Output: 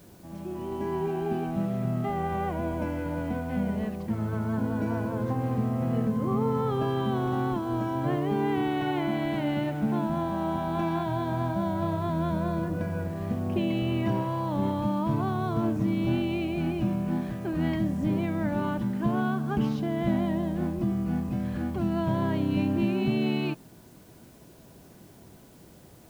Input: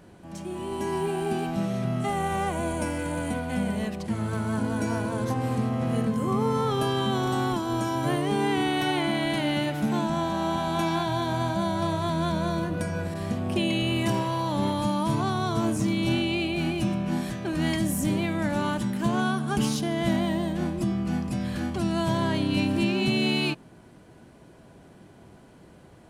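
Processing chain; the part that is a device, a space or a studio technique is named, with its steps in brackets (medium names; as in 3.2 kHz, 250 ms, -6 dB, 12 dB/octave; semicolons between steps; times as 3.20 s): cassette deck with a dirty head (tape spacing loss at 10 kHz 35 dB; wow and flutter 11 cents; white noise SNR 32 dB)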